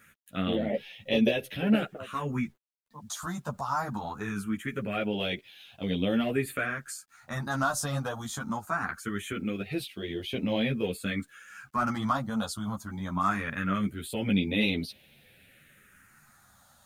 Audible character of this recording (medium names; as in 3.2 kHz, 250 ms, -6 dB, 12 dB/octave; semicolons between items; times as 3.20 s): phasing stages 4, 0.22 Hz, lowest notch 380–1300 Hz; a quantiser's noise floor 12-bit, dither none; a shimmering, thickened sound